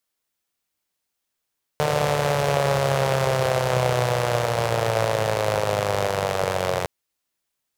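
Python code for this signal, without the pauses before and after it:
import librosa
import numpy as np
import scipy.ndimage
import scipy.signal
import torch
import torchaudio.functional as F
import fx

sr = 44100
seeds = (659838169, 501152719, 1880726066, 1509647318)

y = fx.engine_four_rev(sr, seeds[0], length_s=5.06, rpm=4500, resonances_hz=(130.0, 530.0), end_rpm=2700)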